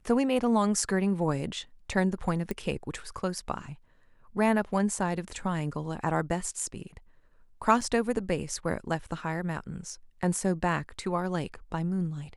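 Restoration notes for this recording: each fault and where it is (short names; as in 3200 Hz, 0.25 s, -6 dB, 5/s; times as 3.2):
2.51 pop -19 dBFS
7.81 gap 4.5 ms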